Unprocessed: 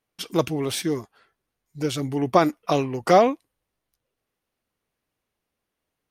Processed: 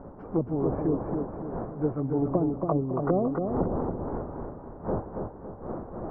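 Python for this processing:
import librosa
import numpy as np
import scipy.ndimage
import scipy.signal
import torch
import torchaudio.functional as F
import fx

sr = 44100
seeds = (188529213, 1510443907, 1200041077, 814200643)

p1 = fx.dmg_wind(x, sr, seeds[0], corner_hz=570.0, level_db=-34.0)
p2 = scipy.signal.sosfilt(scipy.signal.cheby2(4, 50, 3200.0, 'lowpass', fs=sr, output='sos'), p1)
p3 = fx.env_lowpass_down(p2, sr, base_hz=320.0, full_db=-18.0)
p4 = p3 + fx.echo_feedback(p3, sr, ms=279, feedback_pct=44, wet_db=-5.0, dry=0)
y = p4 * 10.0 ** (-2.0 / 20.0)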